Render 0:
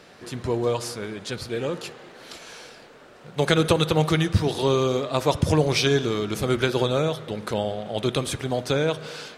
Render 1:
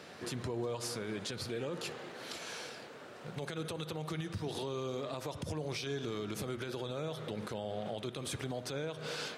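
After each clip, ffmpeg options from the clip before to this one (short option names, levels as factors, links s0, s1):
-af "highpass=f=77:w=0.5412,highpass=f=77:w=1.3066,acompressor=threshold=0.0316:ratio=4,alimiter=level_in=1.5:limit=0.0631:level=0:latency=1:release=83,volume=0.668,volume=0.841"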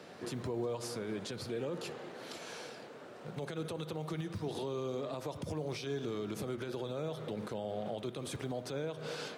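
-filter_complex "[0:a]acrossover=split=120|1000[s0][s1][s2];[s0]acrusher=samples=39:mix=1:aa=0.000001[s3];[s1]acontrast=31[s4];[s3][s4][s2]amix=inputs=3:normalize=0,volume=0.631"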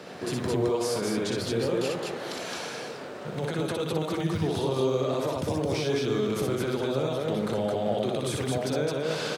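-af "aecho=1:1:61.22|215.7:0.708|0.794,volume=2.51"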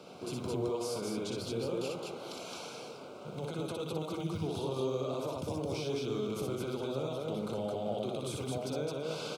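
-af "asuperstop=centerf=1800:order=4:qfactor=2.4,volume=0.398"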